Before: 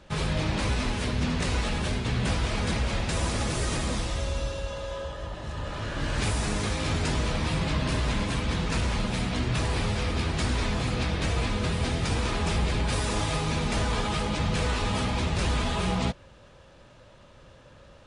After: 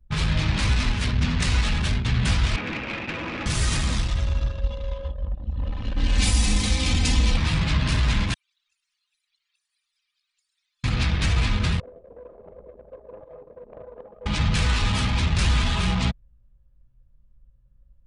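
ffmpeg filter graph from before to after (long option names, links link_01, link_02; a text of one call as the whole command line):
ffmpeg -i in.wav -filter_complex "[0:a]asettb=1/sr,asplit=3[link_01][link_02][link_03];[link_01]atrim=end=2.564[link_04];[link_02]atrim=start=2.56:end=3.46,asetpts=PTS-STARTPTS,afade=type=in:duration=0.004:curve=qsin,afade=type=out:start_time=0.896:duration=0.004:curve=qsin,acrossover=split=2700[link_05][link_06];[link_06]acompressor=threshold=-50dB:ratio=4:attack=1:release=60[link_07];[link_05][link_07]amix=inputs=2:normalize=0,highpass=230,equalizer=frequency=310:width_type=q:width=4:gain=10,equalizer=frequency=510:width_type=q:width=4:gain=5,equalizer=frequency=2500:width_type=q:width=4:gain=8,lowpass=frequency=7100:width=0.5412,lowpass=frequency=7100:width=1.3066,volume=26.5dB,asoftclip=hard,volume=-26.5dB[link_08];[link_03]atrim=start=3.456[link_09];[link_04][link_08]acrossfade=duration=0.004:curve1=hsin:curve2=qsin[link_10];[link_10][link_09]acrossfade=duration=0.004:curve1=qsin:curve2=hsin,asettb=1/sr,asplit=3[link_11][link_12][link_13];[link_11]atrim=end=4.614[link_14];[link_12]atrim=start=4.61:end=7.37,asetpts=PTS-STARTPTS,afade=type=in:duration=0.004:curve=qsin,afade=type=out:start_time=2.756:duration=0.004:curve=qsin,equalizer=frequency=1400:width_type=o:width=0.84:gain=-10,aecho=1:1:3.9:0.88,atrim=end_sample=121716[link_15];[link_13]atrim=start=7.366[link_16];[link_14][link_15]acrossfade=duration=0.004:curve1=hsin:curve2=qsin[link_17];[link_17][link_16]acrossfade=duration=0.004:curve1=qsin:curve2=hsin,asettb=1/sr,asplit=3[link_18][link_19][link_20];[link_18]atrim=end=8.344[link_21];[link_19]atrim=start=8.34:end=10.84,asetpts=PTS-STARTPTS,afade=type=in:duration=0.004:curve=qsin,afade=type=out:start_time=2.496:duration=0.004:curve=qsin,highpass=frequency=1100:width=0.5412,highpass=frequency=1100:width=1.3066,aderivative,acompressor=threshold=-42dB:ratio=6:attack=3.2:release=140:knee=1:detection=peak[link_22];[link_20]atrim=start=10.836[link_23];[link_21][link_22]acrossfade=duration=0.004:curve1=hsin:curve2=qsin[link_24];[link_24][link_23]acrossfade=duration=0.004:curve1=qsin:curve2=hsin,asettb=1/sr,asplit=3[link_25][link_26][link_27];[link_25]atrim=end=11.804[link_28];[link_26]atrim=start=11.8:end=14.26,asetpts=PTS-STARTPTS,afade=type=in:duration=0.004:curve=qsin,afade=type=out:start_time=2.456:duration=0.004:curve=qsin,acontrast=30,bandpass=frequency=530:width_type=q:width=5.7[link_29];[link_27]atrim=start=14.256[link_30];[link_28][link_29]acrossfade=duration=0.004:curve1=hsin:curve2=qsin[link_31];[link_31][link_30]acrossfade=duration=0.004:curve1=qsin:curve2=hsin,anlmdn=15.8,equalizer=frequency=490:width_type=o:width=2.2:gain=-13.5,volume=8dB" out.wav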